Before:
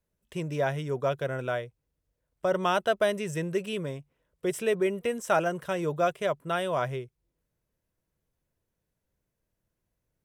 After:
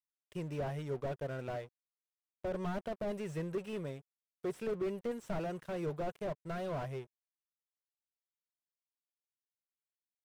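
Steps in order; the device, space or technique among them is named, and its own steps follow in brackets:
early transistor amplifier (dead-zone distortion −49 dBFS; slew-rate limiting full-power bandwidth 21 Hz)
level −6 dB

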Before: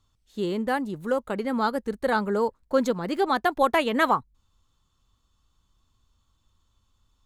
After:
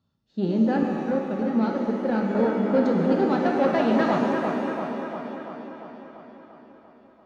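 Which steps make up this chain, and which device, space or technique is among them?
analogue delay pedal into a guitar amplifier (bucket-brigade delay 343 ms, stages 4,096, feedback 65%, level −6 dB; tube saturation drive 18 dB, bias 0.45; loudspeaker in its box 100–4,300 Hz, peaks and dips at 160 Hz +7 dB, 230 Hz +10 dB, 580 Hz +4 dB, 1,100 Hz −9 dB, 2,200 Hz −9 dB, 3,300 Hz −9 dB)
0:00.83–0:02.35: downward expander −18 dBFS
reverb with rising layers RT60 1.8 s, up +7 semitones, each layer −8 dB, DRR 2 dB

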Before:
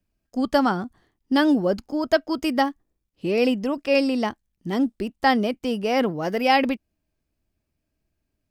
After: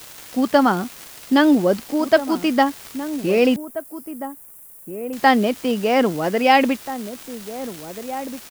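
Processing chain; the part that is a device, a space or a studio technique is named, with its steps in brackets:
78 rpm shellac record (band-pass filter 140–4,100 Hz; surface crackle 290 per second −31 dBFS; white noise bed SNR 22 dB)
0:03.56–0:05.13: inverse Chebyshev band-stop filter 110–2,000 Hz, stop band 80 dB
slap from a distant wall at 280 metres, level −12 dB
level +4.5 dB

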